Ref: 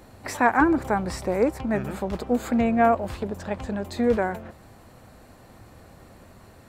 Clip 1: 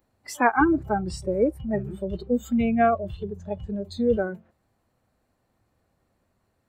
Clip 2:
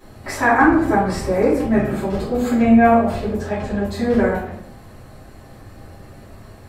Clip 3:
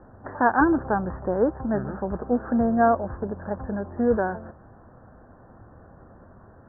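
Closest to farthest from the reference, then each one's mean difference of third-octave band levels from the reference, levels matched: 2, 3, 1; 3.5 dB, 6.5 dB, 12.0 dB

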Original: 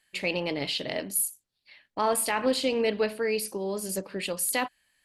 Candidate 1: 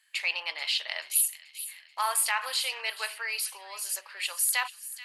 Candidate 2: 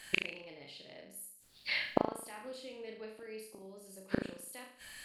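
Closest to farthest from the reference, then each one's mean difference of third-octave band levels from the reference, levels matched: 2, 1; 8.0 dB, 11.5 dB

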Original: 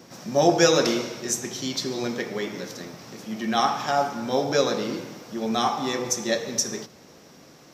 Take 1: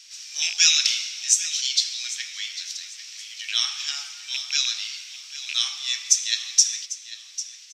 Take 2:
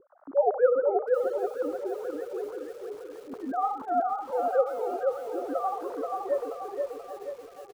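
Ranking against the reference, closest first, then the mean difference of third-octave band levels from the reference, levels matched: 2, 1; 14.0 dB, 19.0 dB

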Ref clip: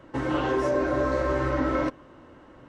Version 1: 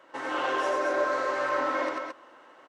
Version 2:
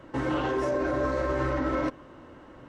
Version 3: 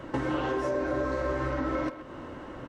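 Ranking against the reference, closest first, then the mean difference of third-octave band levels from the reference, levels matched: 2, 3, 1; 1.5 dB, 4.0 dB, 7.5 dB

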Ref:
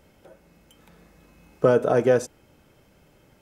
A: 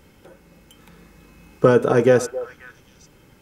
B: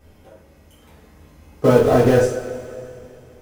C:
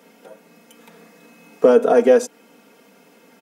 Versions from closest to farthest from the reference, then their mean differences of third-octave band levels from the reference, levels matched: A, C, B; 1.5 dB, 3.0 dB, 4.5 dB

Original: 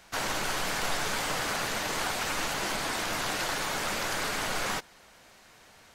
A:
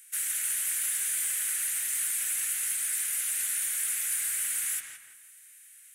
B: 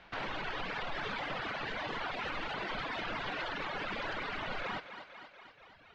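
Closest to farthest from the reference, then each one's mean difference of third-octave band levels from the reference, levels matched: B, A; 8.5 dB, 18.0 dB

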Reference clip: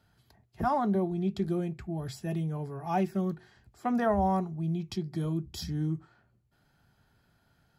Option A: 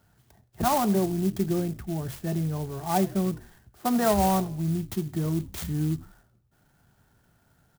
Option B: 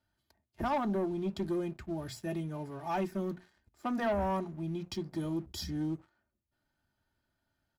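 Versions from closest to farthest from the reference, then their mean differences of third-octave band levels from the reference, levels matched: B, A; 4.5 dB, 7.5 dB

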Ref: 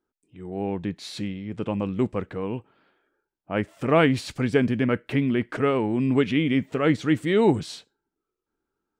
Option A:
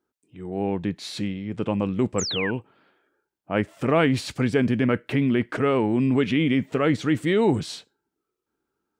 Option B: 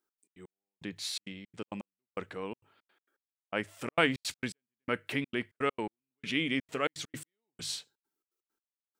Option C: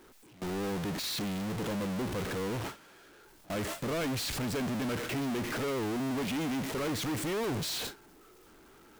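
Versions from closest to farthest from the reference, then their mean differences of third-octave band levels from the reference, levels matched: A, B, C; 1.5 dB, 11.0 dB, 14.5 dB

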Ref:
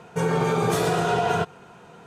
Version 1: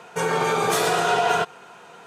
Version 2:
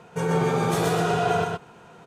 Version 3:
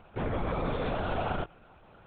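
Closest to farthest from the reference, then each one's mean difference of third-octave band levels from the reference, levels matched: 2, 1, 3; 2.5 dB, 4.5 dB, 7.0 dB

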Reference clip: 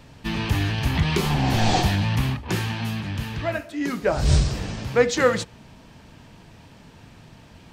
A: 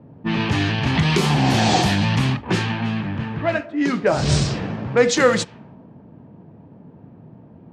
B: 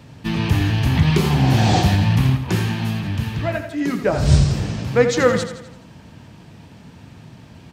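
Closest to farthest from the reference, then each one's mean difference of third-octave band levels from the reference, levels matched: B, A; 3.0 dB, 4.5 dB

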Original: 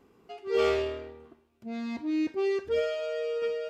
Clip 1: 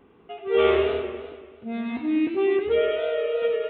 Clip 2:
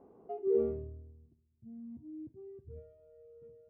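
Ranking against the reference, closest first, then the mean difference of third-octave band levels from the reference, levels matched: 1, 2; 5.0 dB, 12.0 dB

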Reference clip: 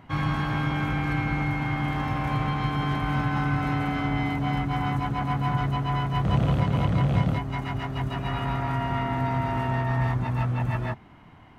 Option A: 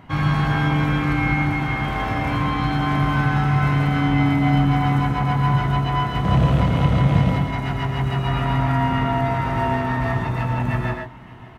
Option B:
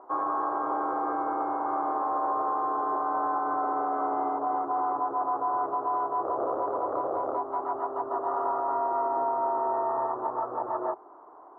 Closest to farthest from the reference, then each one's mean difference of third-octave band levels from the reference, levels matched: A, B; 1.5 dB, 14.0 dB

